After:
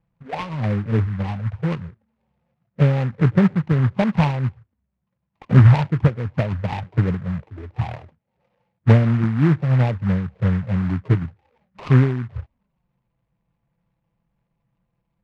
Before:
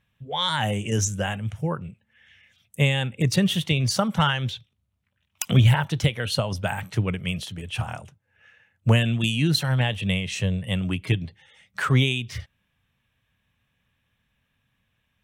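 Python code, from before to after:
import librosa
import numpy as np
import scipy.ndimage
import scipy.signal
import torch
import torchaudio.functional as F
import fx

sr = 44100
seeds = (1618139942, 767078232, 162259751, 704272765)

y = fx.env_flanger(x, sr, rest_ms=6.0, full_db=-18.0)
y = scipy.signal.sosfilt(scipy.signal.butter(12, 1100.0, 'lowpass', fs=sr, output='sos'), y)
y = fx.noise_mod_delay(y, sr, seeds[0], noise_hz=1300.0, depth_ms=0.1)
y = y * 10.0 ** (6.0 / 20.0)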